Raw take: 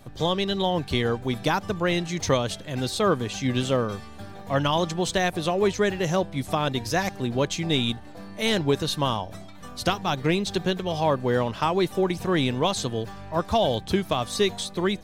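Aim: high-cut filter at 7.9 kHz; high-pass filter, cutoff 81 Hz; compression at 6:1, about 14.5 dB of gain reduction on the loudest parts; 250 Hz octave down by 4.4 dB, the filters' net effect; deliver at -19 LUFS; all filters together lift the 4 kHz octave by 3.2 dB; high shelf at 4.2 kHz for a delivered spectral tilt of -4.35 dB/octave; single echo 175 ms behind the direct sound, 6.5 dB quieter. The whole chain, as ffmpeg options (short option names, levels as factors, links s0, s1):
-af "highpass=81,lowpass=7900,equalizer=f=250:t=o:g=-6.5,equalizer=f=4000:t=o:g=7.5,highshelf=f=4200:g=-7,acompressor=threshold=0.0178:ratio=6,aecho=1:1:175:0.473,volume=8.41"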